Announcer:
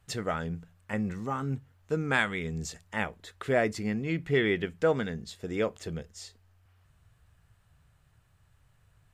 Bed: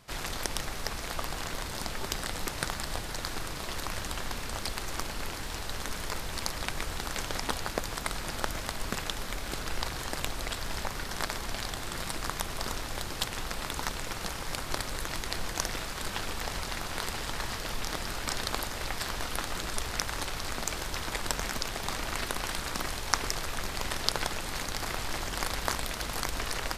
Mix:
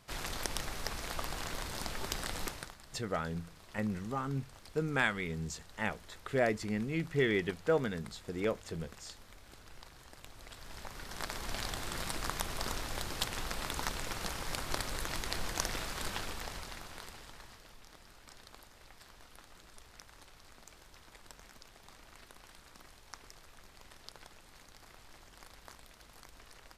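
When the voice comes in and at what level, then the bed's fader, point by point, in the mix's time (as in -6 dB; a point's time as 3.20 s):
2.85 s, -4.0 dB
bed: 2.46 s -4 dB
2.77 s -20 dB
10.20 s -20 dB
11.57 s -3 dB
16.05 s -3 dB
17.80 s -22.5 dB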